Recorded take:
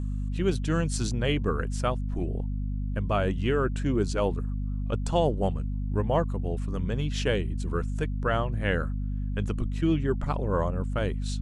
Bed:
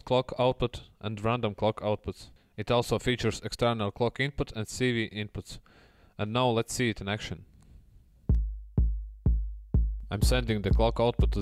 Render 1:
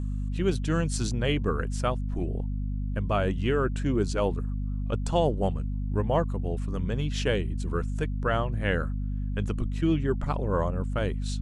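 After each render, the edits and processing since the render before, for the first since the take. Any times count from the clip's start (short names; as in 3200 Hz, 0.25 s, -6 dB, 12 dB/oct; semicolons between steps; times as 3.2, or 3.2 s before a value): nothing audible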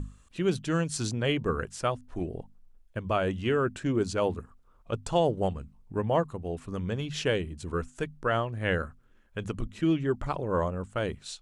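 notches 50/100/150/200/250 Hz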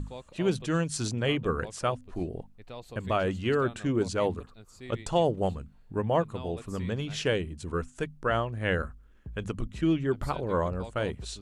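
add bed -17.5 dB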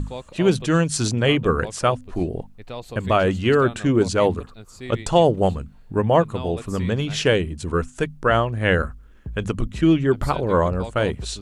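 gain +9 dB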